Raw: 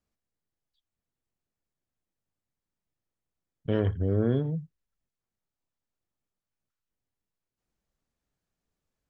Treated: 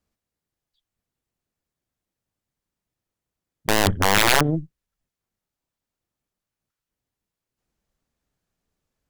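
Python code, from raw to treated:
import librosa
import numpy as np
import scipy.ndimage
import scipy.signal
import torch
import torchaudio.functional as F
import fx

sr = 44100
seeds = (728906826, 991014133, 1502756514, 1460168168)

y = fx.cheby_harmonics(x, sr, harmonics=(2, 6), levels_db=(-12, -10), full_scale_db=-13.5)
y = (np.mod(10.0 ** (13.5 / 20.0) * y + 1.0, 2.0) - 1.0) / 10.0 ** (13.5 / 20.0)
y = y * librosa.db_to_amplitude(5.0)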